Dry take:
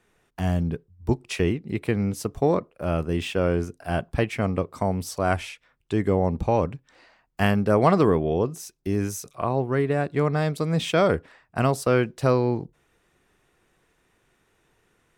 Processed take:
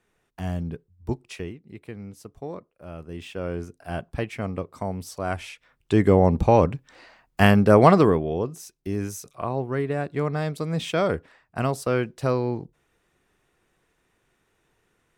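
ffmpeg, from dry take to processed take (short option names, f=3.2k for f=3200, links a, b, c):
-af "volume=14dB,afade=t=out:st=1.13:d=0.4:silence=0.354813,afade=t=in:st=2.95:d=0.86:silence=0.354813,afade=t=in:st=5.37:d=0.6:silence=0.316228,afade=t=out:st=7.8:d=0.46:silence=0.398107"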